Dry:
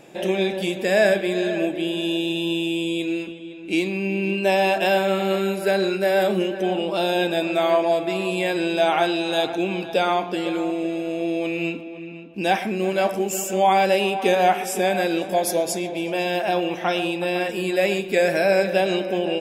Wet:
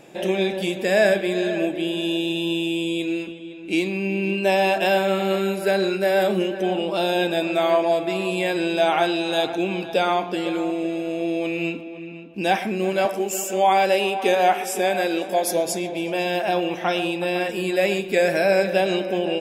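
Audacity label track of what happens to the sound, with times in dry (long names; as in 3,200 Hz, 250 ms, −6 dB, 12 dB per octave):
13.050000	15.510000	high-pass filter 240 Hz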